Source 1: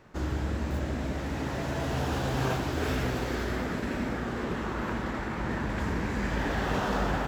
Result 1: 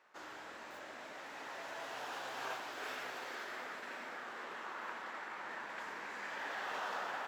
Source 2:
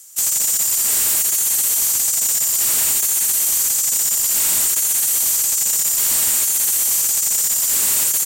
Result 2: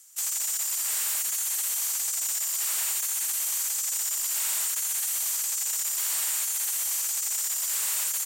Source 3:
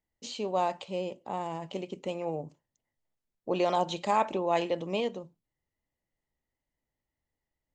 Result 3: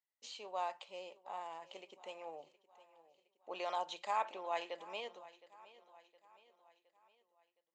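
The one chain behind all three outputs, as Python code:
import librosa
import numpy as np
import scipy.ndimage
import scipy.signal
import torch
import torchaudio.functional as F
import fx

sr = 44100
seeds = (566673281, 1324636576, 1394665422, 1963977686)

y = scipy.signal.sosfilt(scipy.signal.butter(2, 840.0, 'highpass', fs=sr, output='sos'), x)
y = fx.high_shelf(y, sr, hz=4200.0, db=-6.0)
y = fx.echo_feedback(y, sr, ms=715, feedback_pct=49, wet_db=-18.5)
y = y * 10.0 ** (-6.0 / 20.0)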